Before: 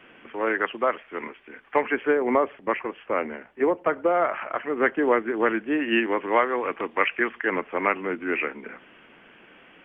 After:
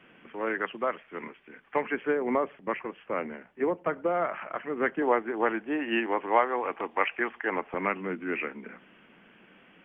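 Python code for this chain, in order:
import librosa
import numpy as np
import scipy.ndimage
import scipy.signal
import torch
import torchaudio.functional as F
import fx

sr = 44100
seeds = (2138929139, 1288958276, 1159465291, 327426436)

y = fx.peak_eq(x, sr, hz=fx.steps((0.0, 170.0), (5.02, 800.0), (7.74, 190.0)), db=8.5, octaves=0.67)
y = y * 10.0 ** (-6.0 / 20.0)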